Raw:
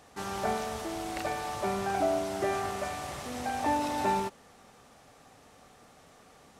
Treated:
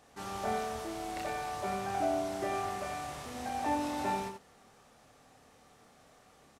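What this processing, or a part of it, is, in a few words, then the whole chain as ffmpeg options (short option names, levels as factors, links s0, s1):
slapback doubling: -filter_complex "[0:a]asplit=3[s0][s1][s2];[s1]adelay=27,volume=0.562[s3];[s2]adelay=89,volume=0.447[s4];[s0][s3][s4]amix=inputs=3:normalize=0,volume=0.501"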